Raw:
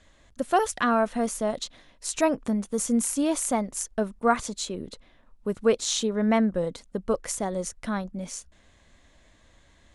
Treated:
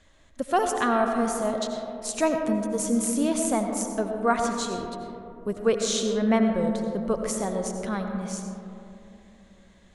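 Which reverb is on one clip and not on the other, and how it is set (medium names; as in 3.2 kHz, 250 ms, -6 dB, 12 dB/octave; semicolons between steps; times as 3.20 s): algorithmic reverb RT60 3 s, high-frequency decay 0.25×, pre-delay 50 ms, DRR 4 dB; trim -1 dB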